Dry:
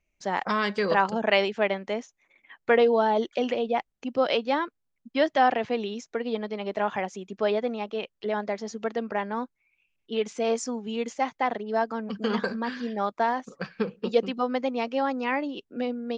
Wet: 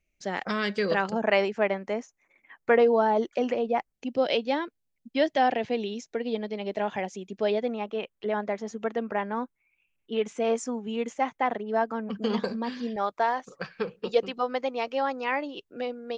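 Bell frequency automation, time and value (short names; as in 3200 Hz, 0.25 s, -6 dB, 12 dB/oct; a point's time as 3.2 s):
bell -9.5 dB 0.69 oct
970 Hz
from 1.12 s 3500 Hz
from 3.93 s 1200 Hz
from 7.68 s 4700 Hz
from 12.23 s 1500 Hz
from 12.96 s 230 Hz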